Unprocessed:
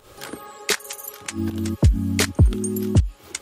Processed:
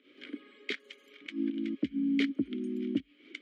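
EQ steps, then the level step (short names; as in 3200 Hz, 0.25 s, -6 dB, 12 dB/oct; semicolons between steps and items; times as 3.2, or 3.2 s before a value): three-band isolator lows -24 dB, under 220 Hz, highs -18 dB, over 4000 Hz; dynamic EQ 2300 Hz, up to -5 dB, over -40 dBFS, Q 1.9; vowel filter i; +5.0 dB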